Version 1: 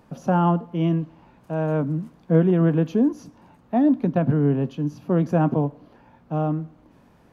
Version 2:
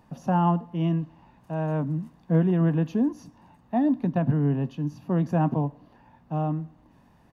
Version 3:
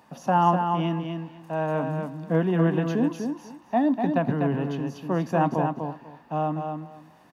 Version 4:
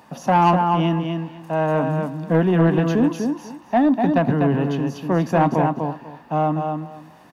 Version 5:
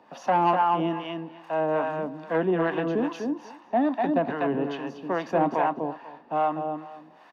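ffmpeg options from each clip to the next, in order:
-af "aecho=1:1:1.1:0.38,volume=-4dB"
-filter_complex "[0:a]highpass=f=550:p=1,asplit=2[a][b];[b]aecho=0:1:247|494|741:0.531|0.0956|0.0172[c];[a][c]amix=inputs=2:normalize=0,volume=6.5dB"
-af "asoftclip=type=tanh:threshold=-15.5dB,volume=7dB"
-filter_complex "[0:a]acrossover=split=270 4900:gain=0.126 1 0.126[a][b][c];[a][b][c]amix=inputs=3:normalize=0,acrossover=split=620[d][e];[d]aeval=exprs='val(0)*(1-0.7/2+0.7/2*cos(2*PI*2.4*n/s))':c=same[f];[e]aeval=exprs='val(0)*(1-0.7/2-0.7/2*cos(2*PI*2.4*n/s))':c=same[g];[f][g]amix=inputs=2:normalize=0"

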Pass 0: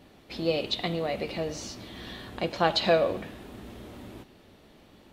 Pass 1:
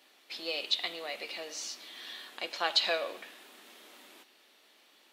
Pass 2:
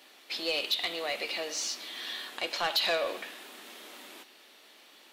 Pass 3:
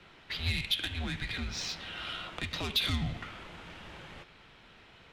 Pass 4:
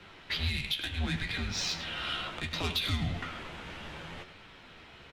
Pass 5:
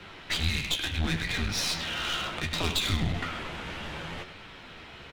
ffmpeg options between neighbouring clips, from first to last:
-af "highpass=f=260:w=0.5412,highpass=f=260:w=1.3066,tiltshelf=f=850:g=-10,volume=-8dB"
-filter_complex "[0:a]asplit=2[a][b];[b]alimiter=level_in=0.5dB:limit=-24dB:level=0:latency=1:release=135,volume=-0.5dB,volume=1dB[c];[a][c]amix=inputs=2:normalize=0,asoftclip=type=tanh:threshold=-21dB"
-filter_complex "[0:a]adynamicsmooth=sensitivity=2:basefreq=3.6k,afreqshift=-410,acrossover=split=150|3000[a][b][c];[b]acompressor=threshold=-42dB:ratio=6[d];[a][d][c]amix=inputs=3:normalize=0,volume=3.5dB"
-af "alimiter=level_in=1dB:limit=-24dB:level=0:latency=1:release=420,volume=-1dB,flanger=delay=9.7:depth=5.3:regen=46:speed=0.68:shape=triangular,aecho=1:1:103:0.211,volume=8dB"
-af "aeval=exprs='clip(val(0),-1,0.0133)':c=same,volume=6dB"

